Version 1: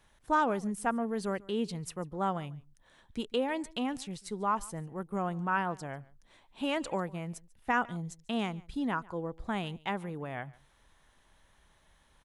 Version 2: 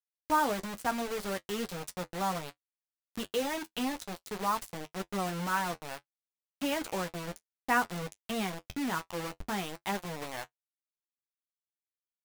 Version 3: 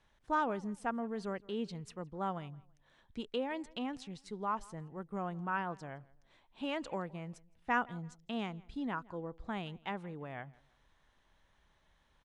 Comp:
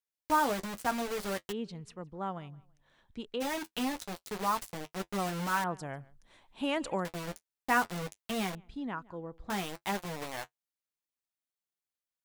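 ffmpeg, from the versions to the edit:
-filter_complex "[2:a]asplit=2[a][b];[1:a]asplit=4[c][d][e][f];[c]atrim=end=1.53[g];[a]atrim=start=1.51:end=3.42[h];[d]atrim=start=3.4:end=5.642[i];[0:a]atrim=start=5.638:end=7.052[j];[e]atrim=start=7.048:end=8.552[k];[b]atrim=start=8.548:end=9.502[l];[f]atrim=start=9.498[m];[g][h]acrossfade=d=0.02:c1=tri:c2=tri[n];[n][i]acrossfade=d=0.02:c1=tri:c2=tri[o];[o][j]acrossfade=d=0.004:c1=hsin:c2=hsin[p];[p][k]acrossfade=d=0.004:c1=hsin:c2=hsin[q];[q][l]acrossfade=d=0.004:c1=hsin:c2=hsin[r];[r][m]acrossfade=d=0.004:c1=hsin:c2=hsin"

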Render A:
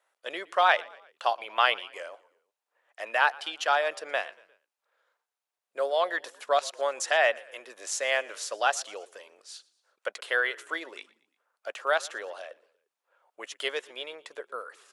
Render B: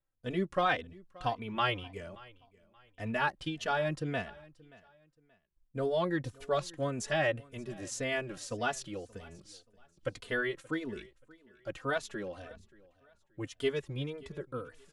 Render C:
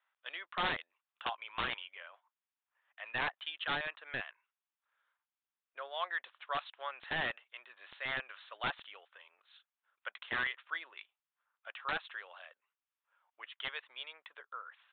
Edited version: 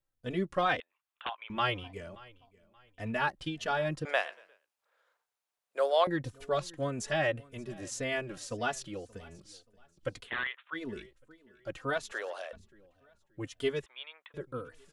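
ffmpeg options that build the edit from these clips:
-filter_complex "[2:a]asplit=3[a][b][c];[0:a]asplit=2[d][e];[1:a]asplit=6[f][g][h][i][j][k];[f]atrim=end=0.802[l];[a]atrim=start=0.798:end=1.502[m];[g]atrim=start=1.498:end=4.052[n];[d]atrim=start=4.048:end=6.072[o];[h]atrim=start=6.068:end=10.31[p];[b]atrim=start=10.21:end=10.82[q];[i]atrim=start=10.72:end=12.122[r];[e]atrim=start=12.118:end=12.532[s];[j]atrim=start=12.528:end=13.862[t];[c]atrim=start=13.858:end=14.342[u];[k]atrim=start=14.338[v];[l][m]acrossfade=d=0.004:c1=hsin:c2=hsin[w];[w][n]acrossfade=d=0.004:c1=hsin:c2=hsin[x];[x][o]acrossfade=d=0.004:c1=hsin:c2=hsin[y];[y][p]acrossfade=d=0.004:c1=hsin:c2=hsin[z];[z][q]acrossfade=d=0.1:c1=tri:c2=tri[aa];[aa][r]acrossfade=d=0.1:c1=tri:c2=tri[ab];[ab][s]acrossfade=d=0.004:c1=hsin:c2=hsin[ac];[ac][t]acrossfade=d=0.004:c1=hsin:c2=hsin[ad];[ad][u]acrossfade=d=0.004:c1=hsin:c2=hsin[ae];[ae][v]acrossfade=d=0.004:c1=hsin:c2=hsin"

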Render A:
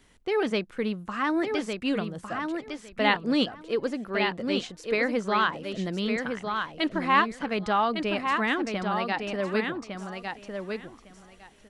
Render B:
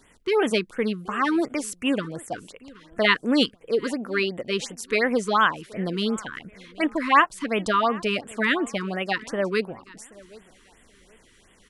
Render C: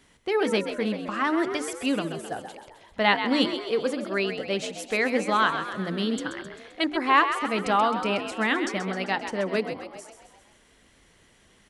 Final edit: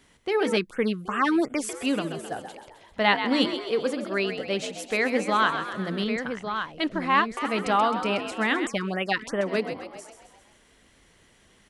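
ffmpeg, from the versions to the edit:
-filter_complex "[1:a]asplit=2[a][b];[2:a]asplit=4[c][d][e][f];[c]atrim=end=0.572[g];[a]atrim=start=0.568:end=1.692[h];[d]atrim=start=1.688:end=6.042[i];[0:a]atrim=start=6.038:end=7.372[j];[e]atrim=start=7.368:end=8.672[k];[b]atrim=start=8.668:end=9.412[l];[f]atrim=start=9.408[m];[g][h]acrossfade=d=0.004:c1=hsin:c2=hsin[n];[n][i]acrossfade=d=0.004:c1=hsin:c2=hsin[o];[o][j]acrossfade=d=0.004:c1=hsin:c2=hsin[p];[p][k]acrossfade=d=0.004:c1=hsin:c2=hsin[q];[q][l]acrossfade=d=0.004:c1=hsin:c2=hsin[r];[r][m]acrossfade=d=0.004:c1=hsin:c2=hsin"

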